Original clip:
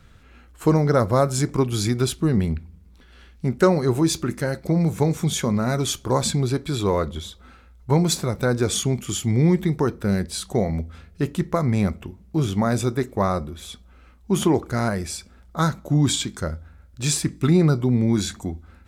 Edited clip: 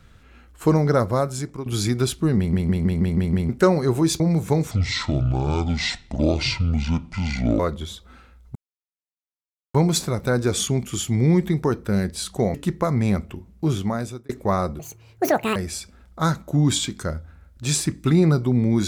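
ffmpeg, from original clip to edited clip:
-filter_complex "[0:a]asplit=17[a][b][c][d][e][f][g][h][i][j][k][l][m][n][o][p][q];[a]atrim=end=1.66,asetpts=PTS-STARTPTS,afade=t=out:st=0.91:d=0.75:silence=0.199526[r];[b]atrim=start=1.66:end=2.532,asetpts=PTS-STARTPTS,afade=t=in:d=0.004:c=hsin:silence=0.199526[s];[c]atrim=start=2.368:end=2.532[t];[d]atrim=start=2.368:end=2.532[u];[e]atrim=start=2.368:end=2.532[v];[f]atrim=start=2.368:end=2.532[w];[g]atrim=start=2.368:end=2.532[x];[h]atrim=start=2.368:end=2.532[y];[i]atrim=start=3.488:end=4.202[z];[j]atrim=start=4.698:end=5.214[aa];[k]atrim=start=5.21:end=6.94,asetpts=PTS-STARTPTS,asetrate=26460,aresample=44100[ab];[l]atrim=start=6.936:end=7.9,asetpts=PTS-STARTPTS,afade=t=out:st=0.96:d=0.004:c=hsin,apad=pad_dur=1.19[ac];[m]atrim=start=7.9:end=10.702,asetpts=PTS-STARTPTS,afade=t=in:d=0.004:c=hsin[ad];[n]atrim=start=11.258:end=13.01,asetpts=PTS-STARTPTS,afade=t=out:st=1.172:d=0.58[ae];[o]atrim=start=13.01:end=13.514,asetpts=PTS-STARTPTS,afade=t=in:d=0.004:c=hsin[af];[p]atrim=start=13.51:end=14.93,asetpts=PTS-STARTPTS,asetrate=82026,aresample=44100[ag];[q]atrim=start=14.926[ah];[r][s]concat=n=2:v=0:a=1[ai];[ai][t]acrossfade=d=0.004:c1=hsin:c2=hsin[aj];[aj][u]acrossfade=d=0.004:c1=hsin:c2=hsin[ak];[ak][v]acrossfade=d=0.004:c1=hsin:c2=hsin[al];[al][w]acrossfade=d=0.004:c1=hsin:c2=hsin[am];[am][x]acrossfade=d=0.004:c1=hsin:c2=hsin[an];[an][y]acrossfade=d=0.004:c1=hsin:c2=hsin[ao];[ao][z]acrossfade=d=0.004:c1=hsin:c2=hsin[ap];[ap][aa]acrossfade=d=0.004:c1=hsin:c2=hsin[aq];[aq][ab]acrossfade=d=0.004:c1=hsin:c2=hsin[ar];[ac][ad]concat=n=2:v=0:a=1[as];[ar][as]acrossfade=d=0.004:c1=hsin:c2=hsin[at];[ae][af]concat=n=2:v=0:a=1[au];[at][au]acrossfade=d=0.004:c1=hsin:c2=hsin[av];[av][ag]acrossfade=d=0.004:c1=hsin:c2=hsin[aw];[aw][ah]acrossfade=d=0.004:c1=hsin:c2=hsin"

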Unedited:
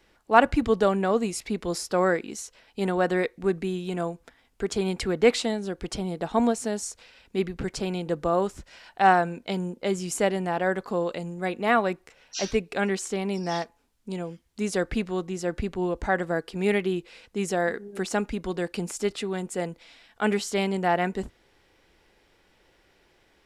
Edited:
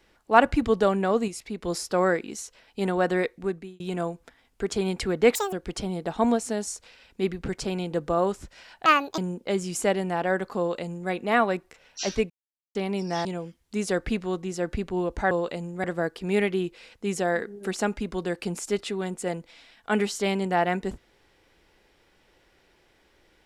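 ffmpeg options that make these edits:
-filter_complex "[0:a]asplit=13[a][b][c][d][e][f][g][h][i][j][k][l][m];[a]atrim=end=1.282[n];[b]atrim=start=1.278:end=1.632,asetpts=PTS-STARTPTS,volume=-5dB[o];[c]atrim=start=1.628:end=3.8,asetpts=PTS-STARTPTS,afade=t=out:st=1.682:d=0.49[p];[d]atrim=start=3.8:end=5.354,asetpts=PTS-STARTPTS,afade=t=in:d=0.004:c=hsin[q];[e]atrim=start=5.35:end=5.68,asetpts=PTS-STARTPTS,asetrate=82467,aresample=44100,atrim=end_sample=7782,asetpts=PTS-STARTPTS[r];[f]atrim=start=5.676:end=9.014[s];[g]atrim=start=9.01:end=9.54,asetpts=PTS-STARTPTS,asetrate=72324,aresample=44100[t];[h]atrim=start=9.536:end=12.66,asetpts=PTS-STARTPTS,afade=t=out:st=3.12:d=0.004:c=hsin[u];[i]atrim=start=12.66:end=13.11,asetpts=PTS-STARTPTS,volume=0[v];[j]atrim=start=13.11:end=13.612,asetpts=PTS-STARTPTS,afade=t=in:d=0.004:c=hsin[w];[k]atrim=start=14.098:end=16.162[x];[l]atrim=start=10.938:end=11.472[y];[m]atrim=start=16.158[z];[n][o]acrossfade=d=0.004:c1=hsin:c2=hsin[aa];[p][q]concat=n=2:v=0:a=1[ab];[aa][ab]acrossfade=d=0.004:c1=hsin:c2=hsin[ac];[ac][r]acrossfade=d=0.004:c1=hsin:c2=hsin[ad];[ad][s]acrossfade=d=0.004:c1=hsin:c2=hsin[ae];[ae][t]acrossfade=d=0.004:c1=hsin:c2=hsin[af];[u][v][w]concat=n=3:v=0:a=1[ag];[af][ag]acrossfade=d=0.004:c1=hsin:c2=hsin[ah];[ah][x]acrossfade=d=0.004:c1=hsin:c2=hsin[ai];[ai][y]acrossfade=d=0.004:c1=hsin:c2=hsin[aj];[aj][z]acrossfade=d=0.004:c1=hsin:c2=hsin"

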